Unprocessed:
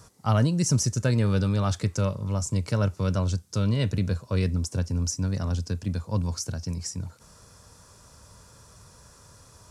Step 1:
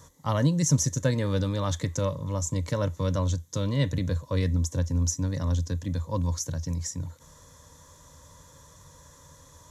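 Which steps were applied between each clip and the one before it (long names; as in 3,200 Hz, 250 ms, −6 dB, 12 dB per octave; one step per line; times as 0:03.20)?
EQ curve with evenly spaced ripples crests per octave 1.1, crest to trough 10 dB
level −1.5 dB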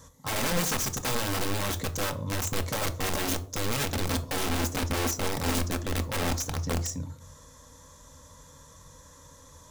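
in parallel at −9.5 dB: bit reduction 4 bits
on the sum: wrap-around overflow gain 23.5 dB
convolution reverb RT60 0.55 s, pre-delay 4 ms, DRR 6.5 dB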